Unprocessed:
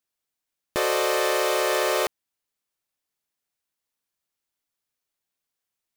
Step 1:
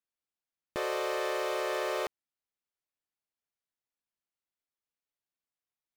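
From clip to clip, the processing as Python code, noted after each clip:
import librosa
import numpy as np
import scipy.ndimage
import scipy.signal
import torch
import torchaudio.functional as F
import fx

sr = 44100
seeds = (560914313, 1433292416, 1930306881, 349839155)

y = fx.high_shelf(x, sr, hz=5300.0, db=-10.0)
y = y * 10.0 ** (-8.5 / 20.0)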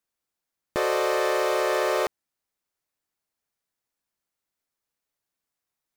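y = fx.peak_eq(x, sr, hz=3000.0, db=-3.5, octaves=0.77)
y = y * 10.0 ** (8.5 / 20.0)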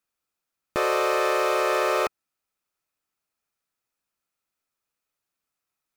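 y = fx.small_body(x, sr, hz=(1300.0, 2500.0), ring_ms=20, db=8)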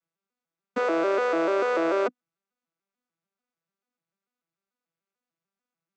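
y = fx.vocoder_arp(x, sr, chord='minor triad', root=52, every_ms=147)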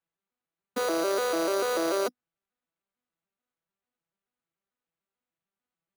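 y = fx.sample_hold(x, sr, seeds[0], rate_hz=5300.0, jitter_pct=0)
y = y * 10.0 ** (-3.0 / 20.0)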